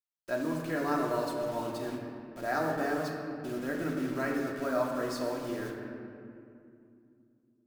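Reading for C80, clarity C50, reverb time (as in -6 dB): 3.5 dB, 2.5 dB, 2.6 s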